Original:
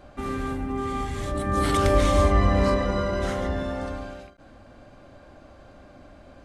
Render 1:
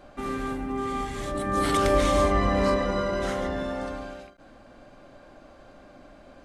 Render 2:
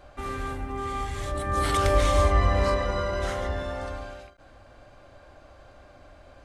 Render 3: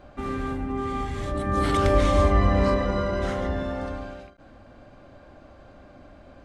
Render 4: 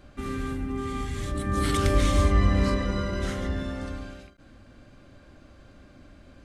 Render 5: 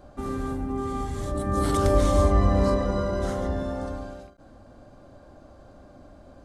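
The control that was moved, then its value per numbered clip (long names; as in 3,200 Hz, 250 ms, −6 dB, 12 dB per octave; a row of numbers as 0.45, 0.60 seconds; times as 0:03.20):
parametric band, centre frequency: 77, 220, 16,000, 740, 2,400 Hertz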